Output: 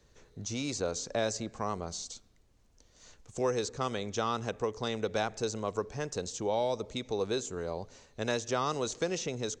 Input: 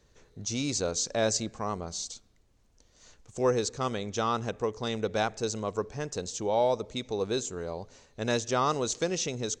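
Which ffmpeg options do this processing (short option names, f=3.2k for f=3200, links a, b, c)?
-filter_complex "[0:a]acrossover=split=390|2200[a][b][c];[a]acompressor=threshold=-36dB:ratio=4[d];[b]acompressor=threshold=-29dB:ratio=4[e];[c]acompressor=threshold=-38dB:ratio=4[f];[d][e][f]amix=inputs=3:normalize=0"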